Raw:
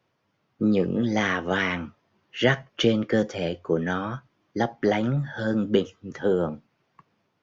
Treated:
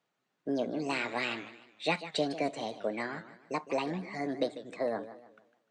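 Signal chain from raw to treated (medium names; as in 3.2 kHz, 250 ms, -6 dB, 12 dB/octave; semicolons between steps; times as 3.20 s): bass shelf 120 Hz -11 dB; tape speed +30%; modulated delay 152 ms, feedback 37%, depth 186 cents, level -13.5 dB; trim -8 dB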